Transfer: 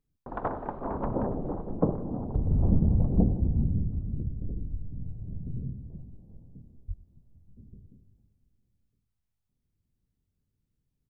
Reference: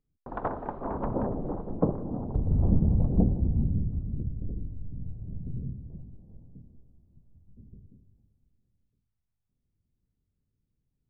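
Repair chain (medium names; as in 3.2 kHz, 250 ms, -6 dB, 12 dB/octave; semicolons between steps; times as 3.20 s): 2.56–2.68 s: high-pass 140 Hz 24 dB/octave; 4.70–4.82 s: high-pass 140 Hz 24 dB/octave; 6.87–6.99 s: high-pass 140 Hz 24 dB/octave; inverse comb 98 ms -18.5 dB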